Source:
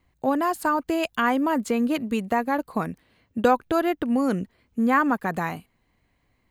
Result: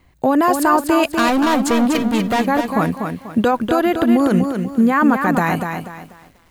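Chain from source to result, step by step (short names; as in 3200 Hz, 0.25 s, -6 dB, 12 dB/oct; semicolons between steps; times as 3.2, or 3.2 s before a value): 1.06–2.41 hard clip -26.5 dBFS, distortion -10 dB; maximiser +18.5 dB; lo-fi delay 0.244 s, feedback 35%, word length 7-bit, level -6 dB; gain -6.5 dB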